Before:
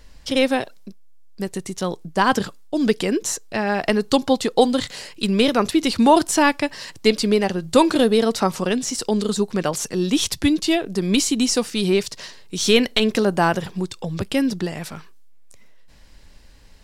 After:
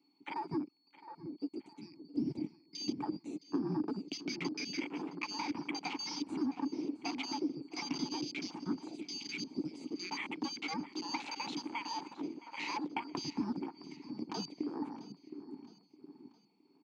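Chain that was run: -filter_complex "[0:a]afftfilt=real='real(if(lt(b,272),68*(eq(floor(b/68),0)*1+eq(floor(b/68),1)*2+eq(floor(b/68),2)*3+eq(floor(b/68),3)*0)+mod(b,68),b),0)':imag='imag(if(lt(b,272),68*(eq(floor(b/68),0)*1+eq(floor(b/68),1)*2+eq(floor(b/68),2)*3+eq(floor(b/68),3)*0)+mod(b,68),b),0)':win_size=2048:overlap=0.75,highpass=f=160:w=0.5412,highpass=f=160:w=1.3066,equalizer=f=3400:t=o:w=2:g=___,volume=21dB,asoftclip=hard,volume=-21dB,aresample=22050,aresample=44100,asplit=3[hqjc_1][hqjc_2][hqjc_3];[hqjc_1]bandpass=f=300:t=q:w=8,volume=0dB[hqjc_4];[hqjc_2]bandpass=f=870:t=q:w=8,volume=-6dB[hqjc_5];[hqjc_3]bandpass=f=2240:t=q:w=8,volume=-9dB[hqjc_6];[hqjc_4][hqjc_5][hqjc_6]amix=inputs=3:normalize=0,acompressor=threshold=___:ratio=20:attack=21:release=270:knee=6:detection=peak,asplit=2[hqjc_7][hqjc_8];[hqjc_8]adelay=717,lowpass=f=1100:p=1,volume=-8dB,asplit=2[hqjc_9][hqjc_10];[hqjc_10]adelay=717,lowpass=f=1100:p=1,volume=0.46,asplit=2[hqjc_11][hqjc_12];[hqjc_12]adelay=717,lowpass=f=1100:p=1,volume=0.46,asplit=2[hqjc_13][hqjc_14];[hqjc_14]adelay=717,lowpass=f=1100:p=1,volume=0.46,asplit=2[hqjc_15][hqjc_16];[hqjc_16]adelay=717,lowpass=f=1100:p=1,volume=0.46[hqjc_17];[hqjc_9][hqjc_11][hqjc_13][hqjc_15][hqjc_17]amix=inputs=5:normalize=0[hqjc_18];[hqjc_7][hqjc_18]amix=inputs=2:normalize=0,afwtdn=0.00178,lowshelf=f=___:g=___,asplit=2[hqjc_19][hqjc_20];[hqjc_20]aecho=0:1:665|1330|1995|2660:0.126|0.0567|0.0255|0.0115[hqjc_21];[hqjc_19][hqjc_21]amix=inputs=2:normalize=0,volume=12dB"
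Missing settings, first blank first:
-7.5, -48dB, 250, 11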